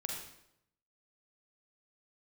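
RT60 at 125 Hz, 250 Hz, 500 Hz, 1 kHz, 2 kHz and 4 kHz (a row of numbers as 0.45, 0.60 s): 0.95, 0.85, 0.80, 0.75, 0.70, 0.65 s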